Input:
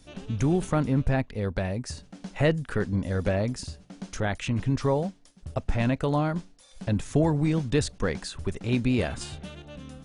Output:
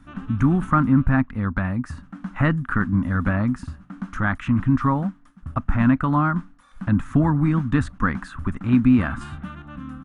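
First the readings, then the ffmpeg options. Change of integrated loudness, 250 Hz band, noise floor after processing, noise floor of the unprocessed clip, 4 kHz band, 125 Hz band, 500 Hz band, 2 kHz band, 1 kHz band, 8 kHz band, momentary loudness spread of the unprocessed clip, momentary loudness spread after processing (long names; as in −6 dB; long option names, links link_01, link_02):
+6.0 dB, +8.0 dB, −52 dBFS, −55 dBFS, can't be measured, +5.0 dB, −5.5 dB, +7.5 dB, +8.5 dB, below −10 dB, 15 LU, 17 LU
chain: -af "firequalizer=gain_entry='entry(150,0);entry(260,6);entry(420,-16);entry(1200,11);entry(2200,-5);entry(4700,-19);entry(11000,-13)':delay=0.05:min_phase=1,volume=5dB"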